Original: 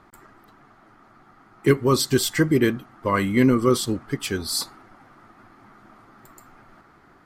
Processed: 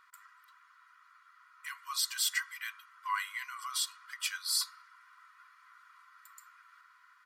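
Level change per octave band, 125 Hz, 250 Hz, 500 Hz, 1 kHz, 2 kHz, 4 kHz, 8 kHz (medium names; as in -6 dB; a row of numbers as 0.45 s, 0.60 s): under -40 dB, under -40 dB, under -40 dB, -10.5 dB, -8.0 dB, -5.5 dB, -5.5 dB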